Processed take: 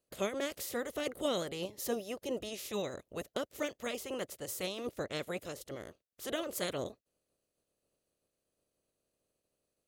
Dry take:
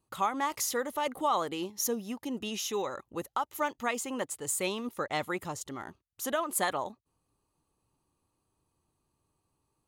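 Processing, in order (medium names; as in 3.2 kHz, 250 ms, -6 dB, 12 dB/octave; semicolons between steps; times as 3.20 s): spectral peaks clipped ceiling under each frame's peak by 22 dB; resonant low shelf 710 Hz +7 dB, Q 3; trim -9 dB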